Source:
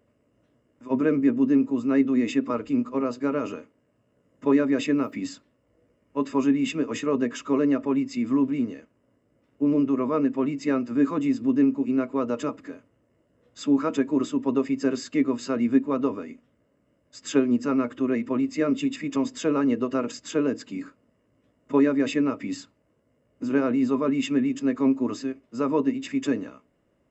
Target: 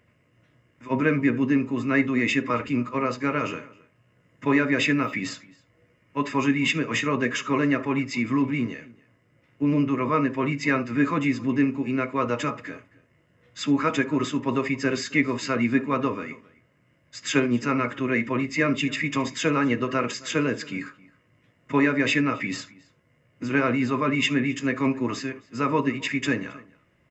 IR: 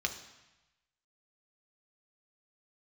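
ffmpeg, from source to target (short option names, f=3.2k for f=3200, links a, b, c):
-filter_complex "[0:a]equalizer=f=125:t=o:w=1:g=5,equalizer=f=250:t=o:w=1:g=-3,equalizer=f=1k:t=o:w=1:g=5,equalizer=f=2k:t=o:w=1:g=9,asplit=2[a][b];[b]adelay=268.2,volume=-22dB,highshelf=f=4k:g=-6.04[c];[a][c]amix=inputs=2:normalize=0,asplit=2[d][e];[1:a]atrim=start_sample=2205,atrim=end_sample=3528,asetrate=42777,aresample=44100[f];[e][f]afir=irnorm=-1:irlink=0,volume=-6.5dB[g];[d][g]amix=inputs=2:normalize=0"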